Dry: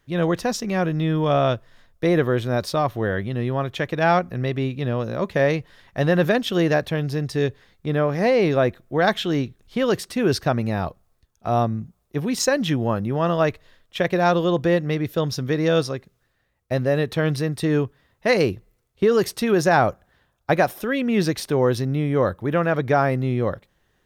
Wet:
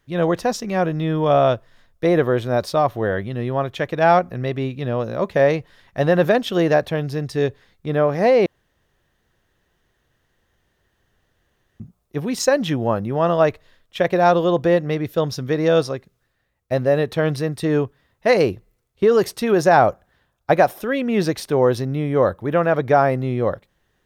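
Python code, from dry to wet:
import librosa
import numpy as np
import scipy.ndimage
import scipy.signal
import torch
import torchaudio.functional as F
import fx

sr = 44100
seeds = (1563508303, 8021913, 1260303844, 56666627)

y = fx.edit(x, sr, fx.room_tone_fill(start_s=8.46, length_s=3.34), tone=tone)
y = fx.dynamic_eq(y, sr, hz=670.0, q=0.82, threshold_db=-30.0, ratio=4.0, max_db=6)
y = F.gain(torch.from_numpy(y), -1.0).numpy()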